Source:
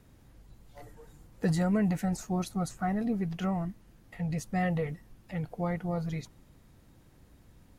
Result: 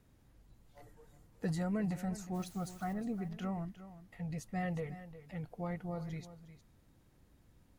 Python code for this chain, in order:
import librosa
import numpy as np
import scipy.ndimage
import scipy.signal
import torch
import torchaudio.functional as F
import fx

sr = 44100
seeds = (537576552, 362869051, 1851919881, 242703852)

p1 = fx.dmg_noise_colour(x, sr, seeds[0], colour='white', level_db=-55.0, at=(2.34, 2.92), fade=0.02)
p2 = p1 + fx.echo_single(p1, sr, ms=359, db=-14.0, dry=0)
y = F.gain(torch.from_numpy(p2), -8.0).numpy()